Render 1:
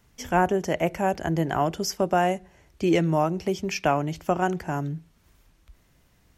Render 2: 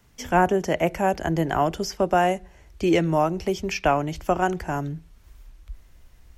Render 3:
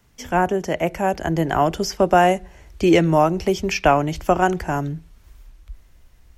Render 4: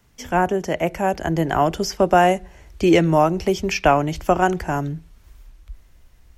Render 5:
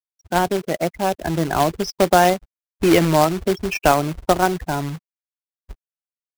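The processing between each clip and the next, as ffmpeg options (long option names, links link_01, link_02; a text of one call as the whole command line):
ffmpeg -i in.wav -filter_complex "[0:a]asubboost=boost=6.5:cutoff=59,acrossover=split=230|4700[link_01][link_02][link_03];[link_03]alimiter=level_in=8dB:limit=-24dB:level=0:latency=1:release=243,volume=-8dB[link_04];[link_01][link_02][link_04]amix=inputs=3:normalize=0,volume=2.5dB" out.wav
ffmpeg -i in.wav -af "dynaudnorm=framelen=230:gausssize=13:maxgain=11.5dB" out.wav
ffmpeg -i in.wav -af anull out.wav
ffmpeg -i in.wav -af "aeval=exprs='sgn(val(0))*max(abs(val(0))-0.00631,0)':channel_layout=same,afftfilt=real='re*gte(hypot(re,im),0.1)':imag='im*gte(hypot(re,im),0.1)':win_size=1024:overlap=0.75,acrusher=bits=2:mode=log:mix=0:aa=0.000001" out.wav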